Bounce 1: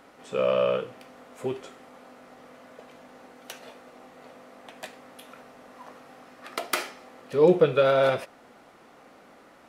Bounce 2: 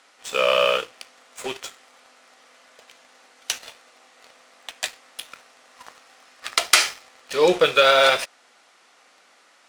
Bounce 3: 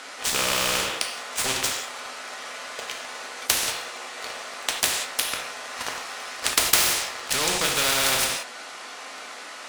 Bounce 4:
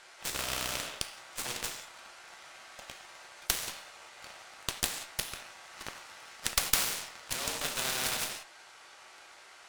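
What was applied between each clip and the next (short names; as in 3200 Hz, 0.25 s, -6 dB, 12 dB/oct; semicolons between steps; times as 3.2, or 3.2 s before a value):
weighting filter ITU-R 468; sample leveller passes 2
non-linear reverb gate 0.21 s falling, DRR 2.5 dB; spectral compressor 4:1
frequency shift +100 Hz; added harmonics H 7 -21 dB, 8 -19 dB, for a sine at -1 dBFS; gain -6.5 dB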